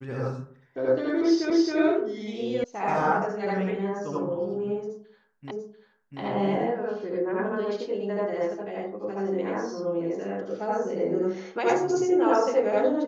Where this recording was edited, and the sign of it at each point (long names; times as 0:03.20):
0:01.50: the same again, the last 0.27 s
0:02.64: cut off before it has died away
0:05.51: the same again, the last 0.69 s